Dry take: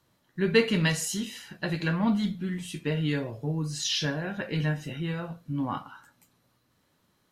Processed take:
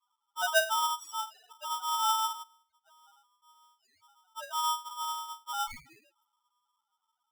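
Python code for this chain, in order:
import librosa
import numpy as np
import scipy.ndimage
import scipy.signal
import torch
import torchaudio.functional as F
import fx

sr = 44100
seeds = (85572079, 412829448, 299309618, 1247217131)

y = fx.gate_flip(x, sr, shuts_db=-33.0, range_db=-29, at=(2.42, 4.37))
y = fx.spec_topn(y, sr, count=1)
y = y * np.sign(np.sin(2.0 * np.pi * 1100.0 * np.arange(len(y)) / sr))
y = y * 10.0 ** (2.0 / 20.0)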